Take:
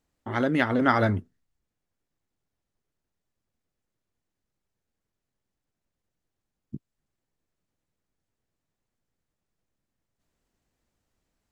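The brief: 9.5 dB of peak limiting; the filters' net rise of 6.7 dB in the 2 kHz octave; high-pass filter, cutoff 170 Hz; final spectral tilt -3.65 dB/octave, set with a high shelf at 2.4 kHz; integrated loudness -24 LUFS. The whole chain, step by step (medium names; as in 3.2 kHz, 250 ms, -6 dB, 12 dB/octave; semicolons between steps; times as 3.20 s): high-pass 170 Hz; peaking EQ 2 kHz +5.5 dB; treble shelf 2.4 kHz +7 dB; trim +1 dB; peak limiter -11 dBFS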